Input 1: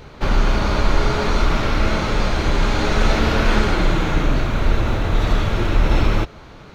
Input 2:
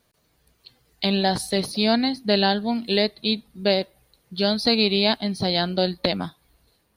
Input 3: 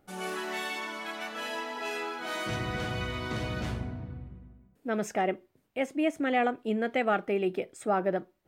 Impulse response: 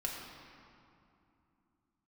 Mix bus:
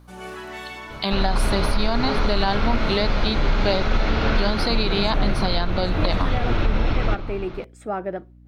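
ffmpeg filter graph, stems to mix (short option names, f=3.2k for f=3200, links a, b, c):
-filter_complex "[0:a]lowpass=f=5.2k:w=0.5412,lowpass=f=5.2k:w=1.3066,adelay=900,volume=-1.5dB,asplit=2[a][b];[b]volume=-13dB[c];[1:a]equalizer=f=1.1k:t=o:w=0.76:g=13.5,volume=2dB[d];[2:a]highshelf=f=4.8k:g=-6.5,volume=0dB[e];[3:a]atrim=start_sample=2205[f];[c][f]afir=irnorm=-1:irlink=0[g];[a][d][e][g]amix=inputs=4:normalize=0,aeval=exprs='val(0)+0.00447*(sin(2*PI*60*n/s)+sin(2*PI*2*60*n/s)/2+sin(2*PI*3*60*n/s)/3+sin(2*PI*4*60*n/s)/4+sin(2*PI*5*60*n/s)/5)':c=same,alimiter=limit=-10dB:level=0:latency=1:release=245"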